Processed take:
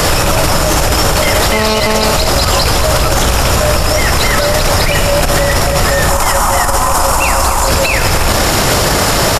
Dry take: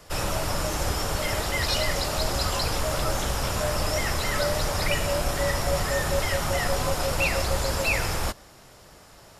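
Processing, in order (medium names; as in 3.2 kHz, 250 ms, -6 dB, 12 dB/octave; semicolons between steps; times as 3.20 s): rattle on loud lows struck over -24 dBFS, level -22 dBFS; 6.09–7.68 s: graphic EQ 125/500/1000/2000/4000/8000 Hz -10/-7/+10/-6/-7/+5 dB; compressor with a negative ratio -33 dBFS, ratio -0.5; feedback delay 234 ms, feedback 58%, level -13.5 dB; 1.52–2.14 s: mobile phone buzz -37 dBFS; loudness maximiser +34.5 dB; trim -1 dB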